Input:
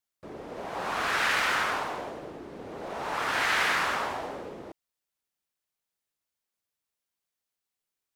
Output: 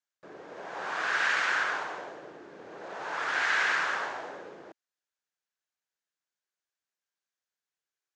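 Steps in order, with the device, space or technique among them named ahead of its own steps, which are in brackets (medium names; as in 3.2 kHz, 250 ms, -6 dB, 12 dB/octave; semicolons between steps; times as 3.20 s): full-range speaker at full volume (loudspeaker Doppler distortion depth 0.18 ms; cabinet simulation 190–7200 Hz, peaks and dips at 240 Hz -8 dB, 1.6 kHz +8 dB, 6.7 kHz +4 dB); trim -4.5 dB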